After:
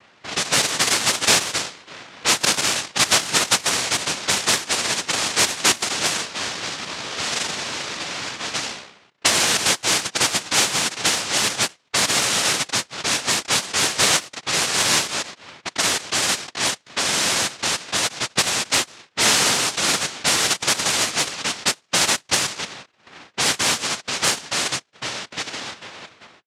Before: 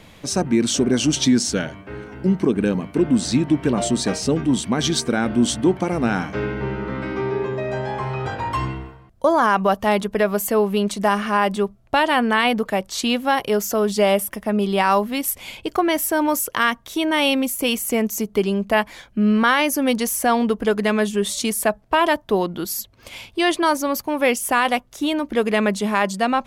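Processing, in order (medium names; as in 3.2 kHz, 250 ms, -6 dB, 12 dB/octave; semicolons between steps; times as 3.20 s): fade out at the end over 2.43 s; noise-vocoded speech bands 1; level-controlled noise filter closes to 2.4 kHz, open at -14.5 dBFS; trim -1.5 dB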